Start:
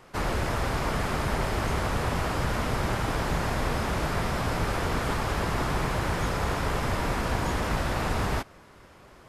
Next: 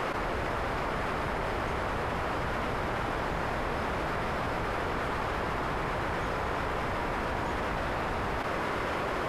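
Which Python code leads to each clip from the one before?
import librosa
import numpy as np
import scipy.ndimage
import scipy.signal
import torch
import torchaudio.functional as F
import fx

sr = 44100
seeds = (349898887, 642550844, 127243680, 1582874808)

y = fx.bass_treble(x, sr, bass_db=-7, treble_db=-12)
y = fx.env_flatten(y, sr, amount_pct=100)
y = y * 10.0 ** (-3.5 / 20.0)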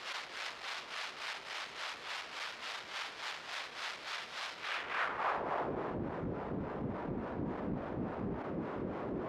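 y = fx.tube_stage(x, sr, drive_db=33.0, bias=0.7)
y = fx.filter_sweep_bandpass(y, sr, from_hz=4400.0, to_hz=230.0, start_s=4.55, end_s=6.02, q=1.1)
y = fx.harmonic_tremolo(y, sr, hz=3.5, depth_pct=70, crossover_hz=480.0)
y = y * 10.0 ** (9.0 / 20.0)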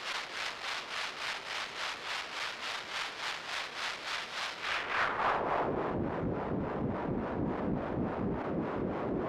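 y = fx.tube_stage(x, sr, drive_db=27.0, bias=0.4)
y = y * 10.0 ** (6.5 / 20.0)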